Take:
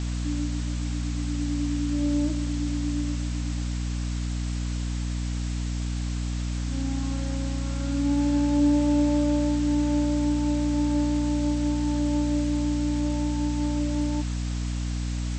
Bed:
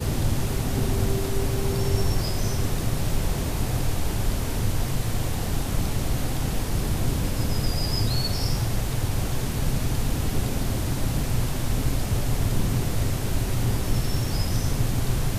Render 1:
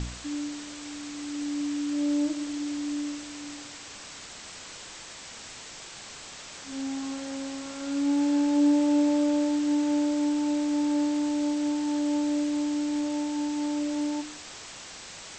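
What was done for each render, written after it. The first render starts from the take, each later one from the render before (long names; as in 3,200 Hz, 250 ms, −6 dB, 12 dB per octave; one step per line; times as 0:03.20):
hum removal 60 Hz, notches 5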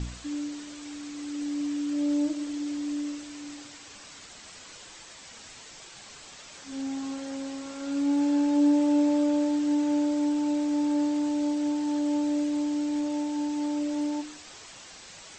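broadband denoise 6 dB, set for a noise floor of −44 dBFS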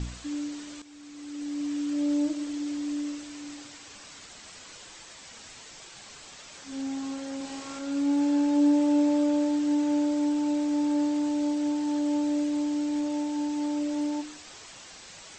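0:00.82–0:01.79: fade in, from −12 dB
0:07.36–0:07.79: flutter between parallel walls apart 8 metres, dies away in 1 s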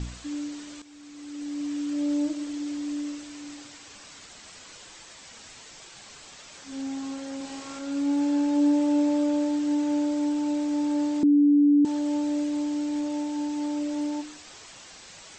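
0:11.23–0:11.85: beep over 290 Hz −15 dBFS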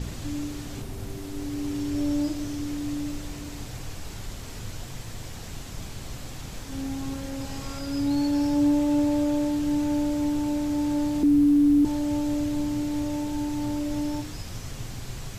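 mix in bed −12.5 dB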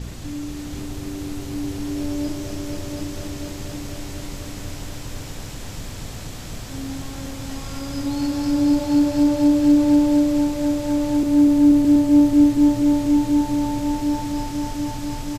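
double-tracking delay 34 ms −12.5 dB
echo machine with several playback heads 242 ms, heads all three, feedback 72%, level −7 dB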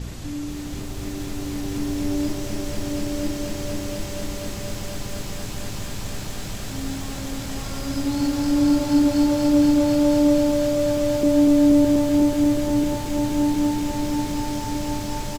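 single-tap delay 987 ms −3 dB
feedback echo at a low word length 479 ms, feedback 80%, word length 7 bits, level −10.5 dB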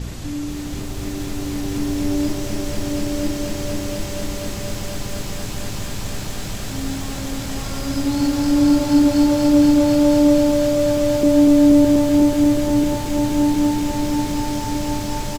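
level +3.5 dB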